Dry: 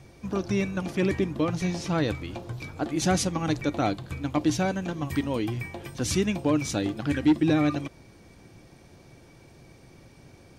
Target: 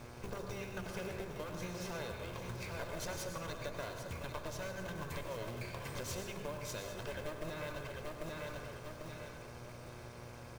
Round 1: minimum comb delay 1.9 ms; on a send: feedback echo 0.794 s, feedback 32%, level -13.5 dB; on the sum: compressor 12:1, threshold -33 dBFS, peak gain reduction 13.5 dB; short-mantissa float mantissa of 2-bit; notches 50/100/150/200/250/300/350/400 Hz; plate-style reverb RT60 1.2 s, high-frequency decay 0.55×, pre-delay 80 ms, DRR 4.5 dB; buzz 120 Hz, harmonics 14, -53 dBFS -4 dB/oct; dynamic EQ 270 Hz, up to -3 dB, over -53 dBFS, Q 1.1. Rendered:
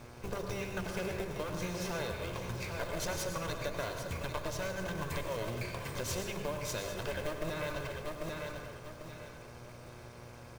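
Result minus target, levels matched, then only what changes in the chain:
compressor: peak gain reduction -5.5 dB
change: compressor 12:1, threshold -39 dBFS, peak gain reduction 19 dB

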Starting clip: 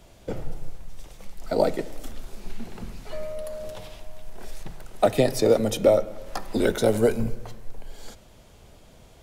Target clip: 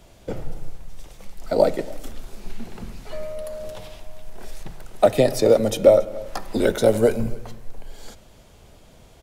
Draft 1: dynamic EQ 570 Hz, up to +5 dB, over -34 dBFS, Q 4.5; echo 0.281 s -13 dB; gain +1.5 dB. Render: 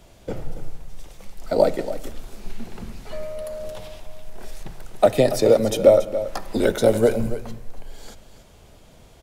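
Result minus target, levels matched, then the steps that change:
echo-to-direct +10 dB
change: echo 0.281 s -23 dB

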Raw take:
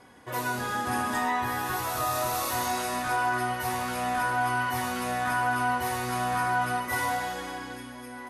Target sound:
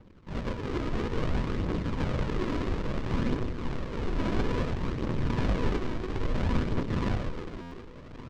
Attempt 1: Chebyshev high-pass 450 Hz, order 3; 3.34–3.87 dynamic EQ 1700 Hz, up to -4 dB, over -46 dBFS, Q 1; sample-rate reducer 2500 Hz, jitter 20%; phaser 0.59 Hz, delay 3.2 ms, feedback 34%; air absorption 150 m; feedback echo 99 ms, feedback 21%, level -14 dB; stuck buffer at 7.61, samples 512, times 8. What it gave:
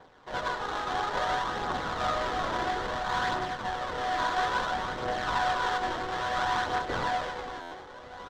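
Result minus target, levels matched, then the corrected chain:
sample-rate reducer: distortion -32 dB
Chebyshev high-pass 450 Hz, order 3; 3.34–3.87 dynamic EQ 1700 Hz, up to -4 dB, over -46 dBFS, Q 1; sample-rate reducer 750 Hz, jitter 20%; phaser 0.59 Hz, delay 3.2 ms, feedback 34%; air absorption 150 m; feedback echo 99 ms, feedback 21%, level -14 dB; stuck buffer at 7.61, samples 512, times 8

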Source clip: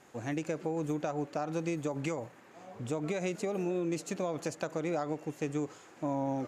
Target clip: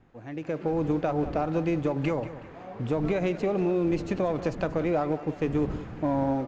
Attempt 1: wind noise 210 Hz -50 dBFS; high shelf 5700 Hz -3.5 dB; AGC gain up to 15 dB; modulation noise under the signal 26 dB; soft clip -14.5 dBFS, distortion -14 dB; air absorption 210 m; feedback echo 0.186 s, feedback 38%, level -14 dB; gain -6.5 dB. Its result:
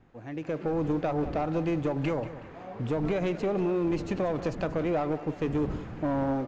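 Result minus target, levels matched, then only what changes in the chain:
soft clip: distortion +9 dB
change: soft clip -8 dBFS, distortion -22 dB

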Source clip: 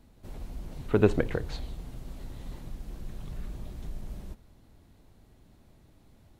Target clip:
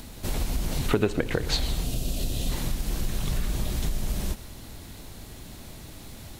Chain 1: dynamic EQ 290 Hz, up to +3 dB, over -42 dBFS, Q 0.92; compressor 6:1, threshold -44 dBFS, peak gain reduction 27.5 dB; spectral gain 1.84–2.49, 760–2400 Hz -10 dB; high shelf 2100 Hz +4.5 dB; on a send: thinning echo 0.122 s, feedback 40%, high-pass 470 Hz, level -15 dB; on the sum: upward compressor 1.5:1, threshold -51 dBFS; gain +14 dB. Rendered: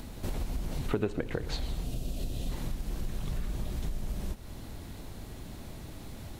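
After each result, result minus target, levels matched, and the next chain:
compressor: peak gain reduction +6.5 dB; 4000 Hz band -3.5 dB
dynamic EQ 290 Hz, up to +3 dB, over -42 dBFS, Q 0.92; compressor 6:1, threshold -36.5 dBFS, peak gain reduction 21 dB; spectral gain 1.84–2.49, 760–2400 Hz -10 dB; high shelf 2100 Hz +4.5 dB; on a send: thinning echo 0.122 s, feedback 40%, high-pass 470 Hz, level -15 dB; on the sum: upward compressor 1.5:1, threshold -51 dBFS; gain +14 dB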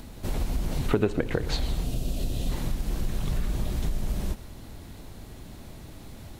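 4000 Hz band -4.5 dB
dynamic EQ 290 Hz, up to +3 dB, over -42 dBFS, Q 0.92; compressor 6:1, threshold -36.5 dBFS, peak gain reduction 21 dB; spectral gain 1.84–2.49, 760–2400 Hz -10 dB; high shelf 2100 Hz +12 dB; on a send: thinning echo 0.122 s, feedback 40%, high-pass 470 Hz, level -15 dB; on the sum: upward compressor 1.5:1, threshold -51 dBFS; gain +14 dB

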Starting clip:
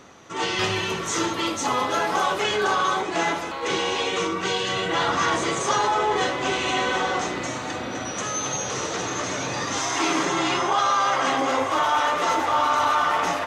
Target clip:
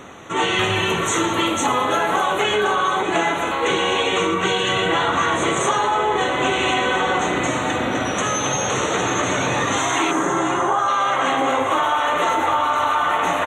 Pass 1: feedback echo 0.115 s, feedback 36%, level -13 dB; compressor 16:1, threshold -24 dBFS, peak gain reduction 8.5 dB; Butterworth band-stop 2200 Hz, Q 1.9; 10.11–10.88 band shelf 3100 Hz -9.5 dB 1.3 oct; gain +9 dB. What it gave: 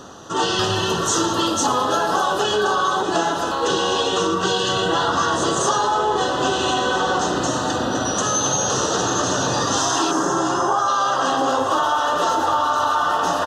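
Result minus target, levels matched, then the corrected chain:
2000 Hz band -4.0 dB
feedback echo 0.115 s, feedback 36%, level -13 dB; compressor 16:1, threshold -24 dBFS, peak gain reduction 8.5 dB; Butterworth band-stop 5000 Hz, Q 1.9; 10.11–10.88 band shelf 3100 Hz -9.5 dB 1.3 oct; gain +9 dB

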